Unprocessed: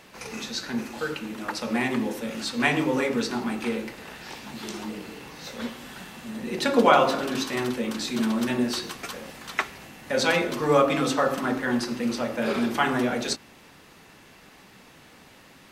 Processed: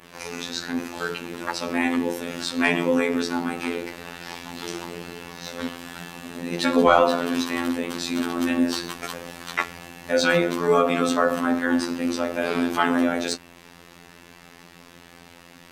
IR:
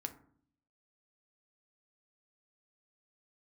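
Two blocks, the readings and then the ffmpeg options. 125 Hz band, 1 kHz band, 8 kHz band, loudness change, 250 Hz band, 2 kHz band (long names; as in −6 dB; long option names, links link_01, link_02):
−1.0 dB, +1.0 dB, +1.0 dB, +2.0 dB, +2.5 dB, +2.0 dB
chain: -af "adynamicequalizer=threshold=0.00708:dfrequency=5100:dqfactor=1:tfrequency=5100:tqfactor=1:attack=5:release=100:ratio=0.375:range=2:mode=cutabove:tftype=bell,afftfilt=real='hypot(re,im)*cos(PI*b)':imag='0':win_size=2048:overlap=0.75,acontrast=70"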